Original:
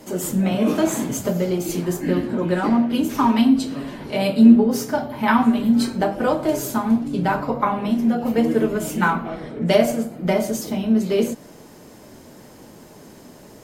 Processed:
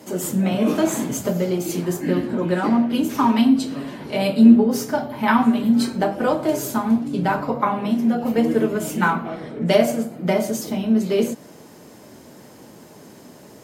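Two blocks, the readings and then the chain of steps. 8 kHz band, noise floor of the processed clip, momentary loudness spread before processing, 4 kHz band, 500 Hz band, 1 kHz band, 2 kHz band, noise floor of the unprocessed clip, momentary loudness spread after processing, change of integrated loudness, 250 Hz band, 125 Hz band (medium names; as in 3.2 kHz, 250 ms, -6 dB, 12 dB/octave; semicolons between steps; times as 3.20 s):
0.0 dB, -45 dBFS, 8 LU, 0.0 dB, 0.0 dB, 0.0 dB, 0.0 dB, -45 dBFS, 8 LU, 0.0 dB, 0.0 dB, -0.5 dB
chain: high-pass 89 Hz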